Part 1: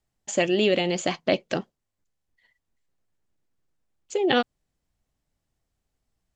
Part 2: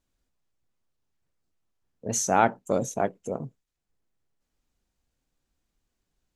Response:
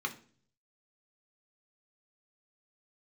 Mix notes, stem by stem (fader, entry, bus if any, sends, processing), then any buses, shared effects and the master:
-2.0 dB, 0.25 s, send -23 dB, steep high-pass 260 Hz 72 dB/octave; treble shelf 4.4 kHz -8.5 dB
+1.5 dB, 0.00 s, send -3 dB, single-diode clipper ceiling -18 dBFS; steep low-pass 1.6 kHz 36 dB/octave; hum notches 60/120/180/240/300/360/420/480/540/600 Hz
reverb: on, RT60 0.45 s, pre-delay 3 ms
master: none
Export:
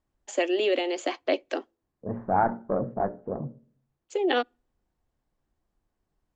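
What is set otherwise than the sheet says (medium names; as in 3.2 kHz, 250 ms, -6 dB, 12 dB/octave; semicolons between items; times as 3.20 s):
stem 1: entry 0.25 s -> 0.00 s; reverb return -9.0 dB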